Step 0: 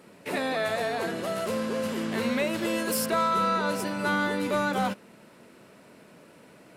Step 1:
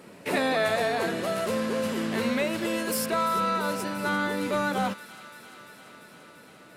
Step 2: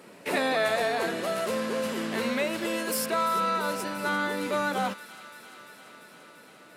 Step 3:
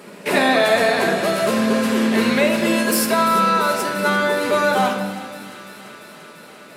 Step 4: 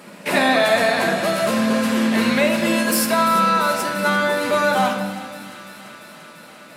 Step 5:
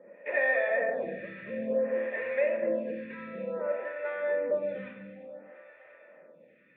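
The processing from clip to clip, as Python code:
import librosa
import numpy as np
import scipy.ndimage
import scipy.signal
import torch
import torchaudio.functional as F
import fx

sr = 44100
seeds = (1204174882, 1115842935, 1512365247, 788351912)

y1 = fx.rider(x, sr, range_db=10, speed_s=2.0)
y1 = fx.echo_wet_highpass(y1, sr, ms=343, feedback_pct=77, hz=1600.0, wet_db=-14)
y2 = fx.highpass(y1, sr, hz=250.0, slope=6)
y3 = fx.room_shoebox(y2, sr, seeds[0], volume_m3=1600.0, walls='mixed', distance_m=1.3)
y3 = y3 * 10.0 ** (8.5 / 20.0)
y4 = fx.peak_eq(y3, sr, hz=410.0, db=-12.5, octaves=0.23)
y5 = fx.formant_cascade(y4, sr, vowel='e')
y5 = fx.stagger_phaser(y5, sr, hz=0.56)
y5 = y5 * 10.0 ** (1.0 / 20.0)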